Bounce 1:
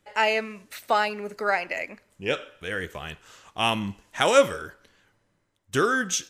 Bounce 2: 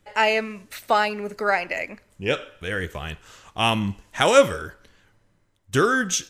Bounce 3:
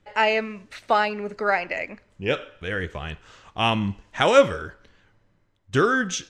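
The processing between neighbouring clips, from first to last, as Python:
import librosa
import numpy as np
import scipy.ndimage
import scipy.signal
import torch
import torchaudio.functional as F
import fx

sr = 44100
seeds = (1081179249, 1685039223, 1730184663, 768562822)

y1 = fx.low_shelf(x, sr, hz=110.0, db=10.0)
y1 = y1 * 10.0 ** (2.5 / 20.0)
y2 = fx.air_absorb(y1, sr, metres=94.0)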